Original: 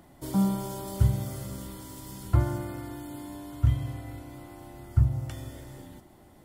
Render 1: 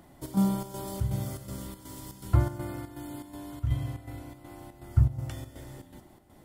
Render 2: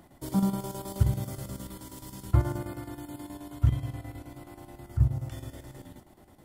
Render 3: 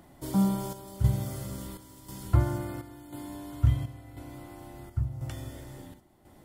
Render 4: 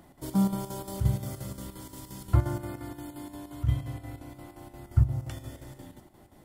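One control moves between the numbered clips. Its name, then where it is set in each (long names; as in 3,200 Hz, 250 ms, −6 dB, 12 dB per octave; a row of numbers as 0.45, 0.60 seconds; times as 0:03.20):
square-wave tremolo, speed: 2.7, 9.4, 0.96, 5.7 Hertz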